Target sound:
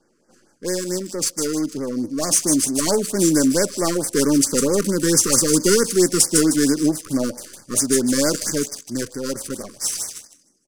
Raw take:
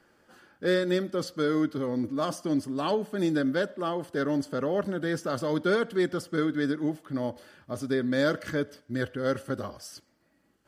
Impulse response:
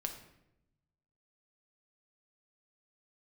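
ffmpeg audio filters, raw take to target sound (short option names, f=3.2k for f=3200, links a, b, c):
-filter_complex "[0:a]highpass=160,highshelf=f=10k:g=-10,asplit=2[a][b];[b]alimiter=limit=-21dB:level=0:latency=1:release=29,volume=-0.5dB[c];[a][c]amix=inputs=2:normalize=0,dynaudnorm=f=310:g=17:m=11.5dB,acrossover=split=580|5100[d][e][f];[e]aeval=exprs='max(val(0),0)':c=same[g];[f]asplit=7[h][i][j][k][l][m][n];[i]adelay=154,afreqshift=38,volume=-3dB[o];[j]adelay=308,afreqshift=76,volume=-9.9dB[p];[k]adelay=462,afreqshift=114,volume=-16.9dB[q];[l]adelay=616,afreqshift=152,volume=-23.8dB[r];[m]adelay=770,afreqshift=190,volume=-30.7dB[s];[n]adelay=924,afreqshift=228,volume=-37.7dB[t];[h][o][p][q][r][s][t]amix=inputs=7:normalize=0[u];[d][g][u]amix=inputs=3:normalize=0,aexciter=amount=14.3:drive=8.8:freq=5.5k,adynamicsmooth=sensitivity=4:basefreq=2.4k,asettb=1/sr,asplit=3[v][w][x];[v]atrim=end=4.194[y];[w]atrim=start=4.19:end=5.92,asetpts=PTS-STARTPTS,afade=t=in:d=0.004:c=qsin,afade=t=out:st=1.726:d=0.004:c=qsin,asuperstop=centerf=690:order=4:qfactor=2.6[z];[x]atrim=start=5.916[aa];[y][z]acrossfade=d=0.004:c1=hsin:c2=qsin[ab];[ab][aa]acrossfade=d=0.004:c1=qsin:c2=hsin,afftfilt=real='re*(1-between(b*sr/1024,670*pow(3300/670,0.5+0.5*sin(2*PI*4.5*pts/sr))/1.41,670*pow(3300/670,0.5+0.5*sin(2*PI*4.5*pts/sr))*1.41))':imag='im*(1-between(b*sr/1024,670*pow(3300/670,0.5+0.5*sin(2*PI*4.5*pts/sr))/1.41,670*pow(3300/670,0.5+0.5*sin(2*PI*4.5*pts/sr))*1.41))':win_size=1024:overlap=0.75,volume=-3dB"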